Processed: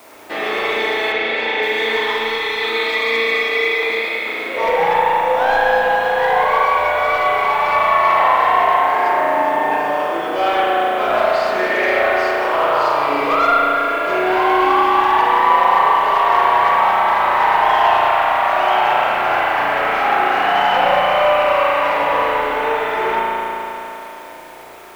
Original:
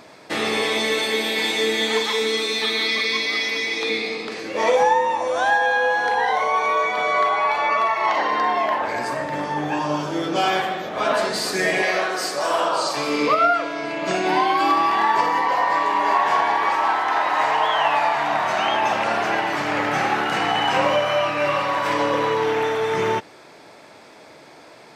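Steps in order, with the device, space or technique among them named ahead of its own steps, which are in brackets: tape answering machine (BPF 360–2800 Hz; soft clip -16 dBFS, distortion -16 dB; wow and flutter 29 cents; white noise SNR 27 dB); notch 1700 Hz, Q 29; 1.12–1.63 air absorption 95 m; spring tank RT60 3.5 s, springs 35 ms, chirp 75 ms, DRR -5.5 dB; gain +1.5 dB

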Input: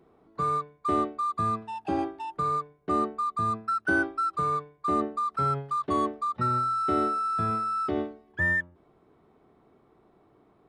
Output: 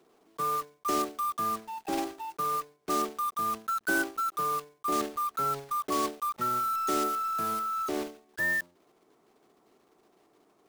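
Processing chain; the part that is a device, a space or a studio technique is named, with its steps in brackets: early digital voice recorder (BPF 250–3500 Hz; block floating point 3-bit); gain -2.5 dB

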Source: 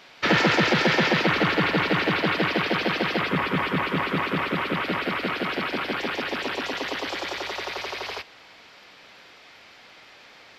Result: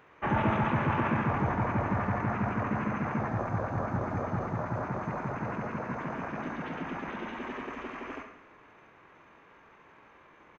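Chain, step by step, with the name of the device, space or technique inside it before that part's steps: monster voice (pitch shift -7.5 st; formant shift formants -4.5 st; low shelf 120 Hz +4 dB; echo 70 ms -10.5 dB; reverb RT60 1.0 s, pre-delay 26 ms, DRR 7.5 dB); gain -8 dB

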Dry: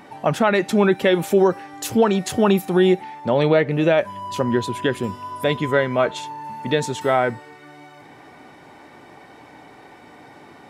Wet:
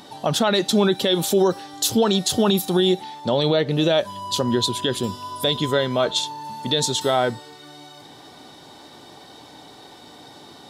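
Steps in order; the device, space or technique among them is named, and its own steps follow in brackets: over-bright horn tweeter (resonant high shelf 2900 Hz +8 dB, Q 3; limiter -9 dBFS, peak gain reduction 6 dB)

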